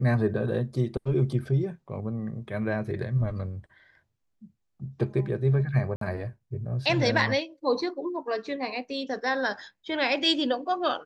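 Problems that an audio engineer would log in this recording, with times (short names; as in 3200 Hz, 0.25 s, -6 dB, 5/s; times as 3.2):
5.96–6.01 gap 53 ms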